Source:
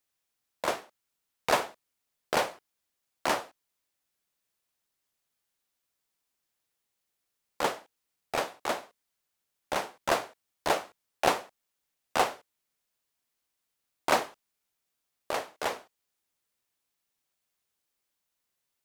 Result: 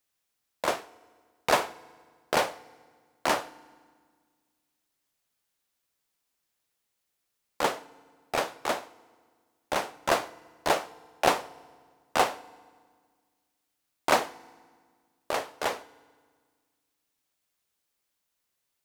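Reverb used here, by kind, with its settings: FDN reverb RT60 1.7 s, low-frequency decay 1.3×, high-frequency decay 0.8×, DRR 19.5 dB; trim +2 dB

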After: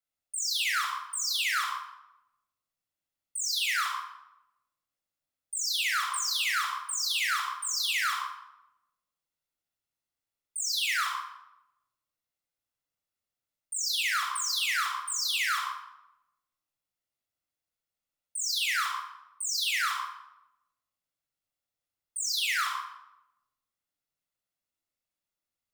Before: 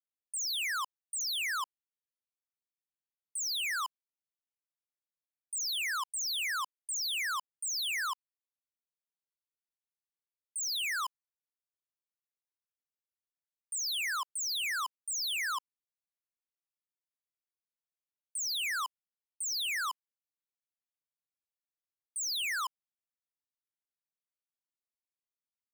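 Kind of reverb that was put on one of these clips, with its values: simulated room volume 3900 m³, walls furnished, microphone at 6.9 m

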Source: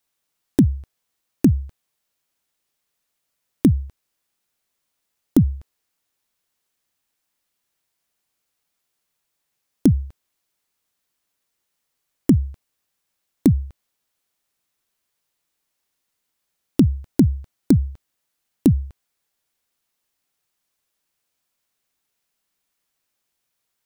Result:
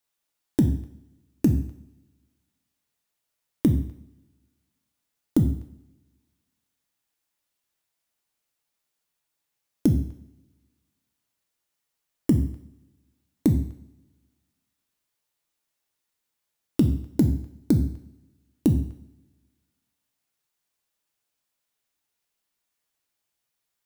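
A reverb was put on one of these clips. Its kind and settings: two-slope reverb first 0.58 s, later 1.5 s, from -21 dB, DRR 4 dB; trim -5.5 dB

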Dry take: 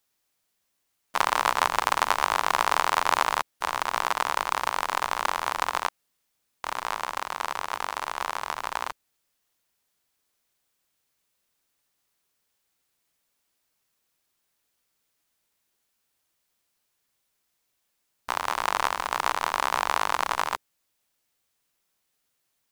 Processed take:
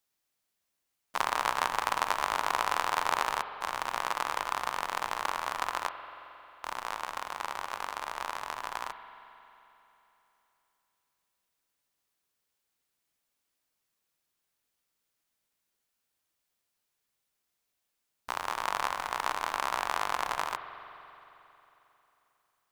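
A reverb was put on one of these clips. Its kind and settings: spring tank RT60 3.3 s, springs 44 ms, chirp 25 ms, DRR 9.5 dB; trim -6 dB

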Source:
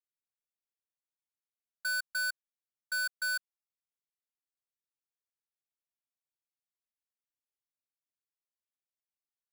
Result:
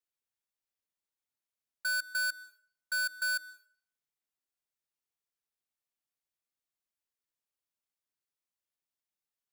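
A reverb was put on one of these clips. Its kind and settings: plate-style reverb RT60 0.52 s, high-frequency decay 0.9×, pre-delay 110 ms, DRR 19.5 dB; trim +1 dB

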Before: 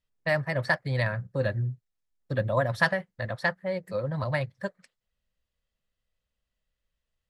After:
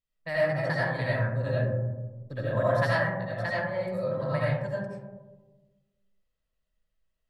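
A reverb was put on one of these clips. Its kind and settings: algorithmic reverb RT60 1.3 s, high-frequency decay 0.25×, pre-delay 45 ms, DRR -8 dB; trim -9 dB

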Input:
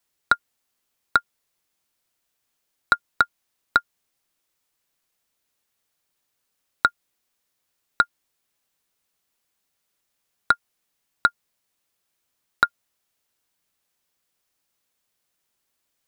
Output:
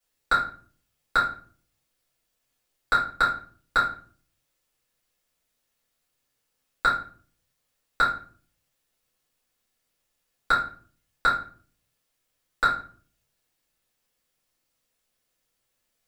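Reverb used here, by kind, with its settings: simulated room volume 36 m³, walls mixed, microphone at 2.1 m; trim -11 dB

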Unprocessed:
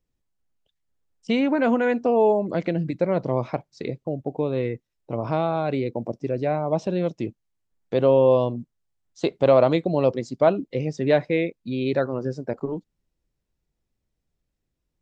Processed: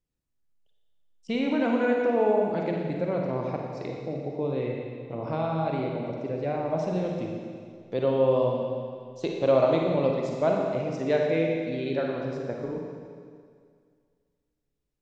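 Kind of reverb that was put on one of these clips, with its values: Schroeder reverb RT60 2.1 s, DRR -0.5 dB; trim -7 dB

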